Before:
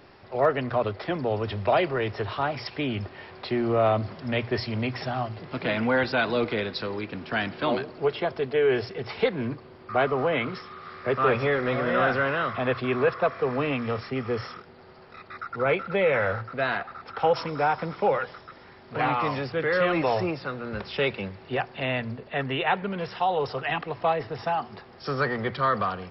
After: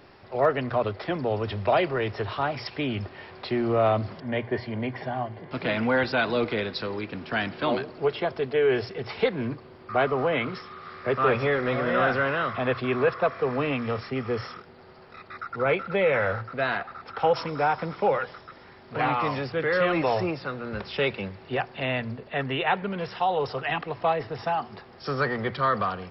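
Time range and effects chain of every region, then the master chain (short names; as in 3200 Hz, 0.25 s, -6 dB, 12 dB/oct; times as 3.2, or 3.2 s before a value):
4.2–5.51 LPF 2500 Hz + notch comb 1300 Hz
whole clip: dry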